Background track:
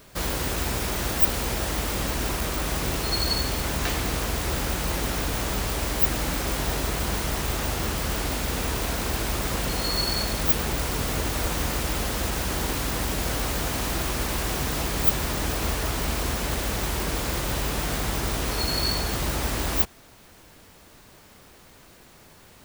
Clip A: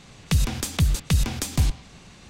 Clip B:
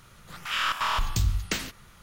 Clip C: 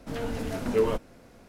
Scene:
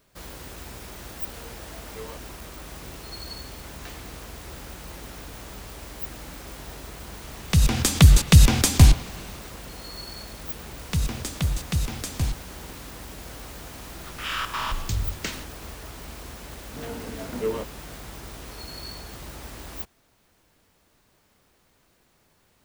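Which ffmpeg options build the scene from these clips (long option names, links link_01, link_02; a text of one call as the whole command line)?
ffmpeg -i bed.wav -i cue0.wav -i cue1.wav -i cue2.wav -filter_complex "[3:a]asplit=2[link_01][link_02];[1:a]asplit=2[link_03][link_04];[0:a]volume=-13dB[link_05];[link_01]highpass=630[link_06];[link_03]dynaudnorm=framelen=150:gausssize=7:maxgain=10dB[link_07];[link_02]highpass=100[link_08];[link_06]atrim=end=1.48,asetpts=PTS-STARTPTS,volume=-9.5dB,afade=type=in:duration=0.004:curve=hsin,afade=type=out:start_time=1.476:duration=0.004:curve=hsin,adelay=1210[link_09];[link_07]atrim=end=2.29,asetpts=PTS-STARTPTS,volume=-0.5dB,afade=type=in:duration=0.004:curve=hsin,afade=type=out:start_time=2.286:duration=0.004:curve=hsin,adelay=318402S[link_10];[link_04]atrim=end=2.29,asetpts=PTS-STARTPTS,volume=-4.5dB,afade=type=in:duration=0.004:curve=hsin,afade=type=out:start_time=2.286:duration=0.004:curve=hsin,adelay=10620[link_11];[2:a]atrim=end=2.02,asetpts=PTS-STARTPTS,volume=-2.5dB,afade=type=in:duration=0.004:curve=hsin,afade=type=out:start_time=2.016:duration=0.004:curve=hsin,adelay=13730[link_12];[link_08]atrim=end=1.48,asetpts=PTS-STARTPTS,volume=-3.5dB,afade=type=in:duration=0.004:curve=hsin,afade=type=out:start_time=1.476:duration=0.004:curve=hsin,adelay=16670[link_13];[link_05][link_09][link_10][link_11][link_12][link_13]amix=inputs=6:normalize=0" out.wav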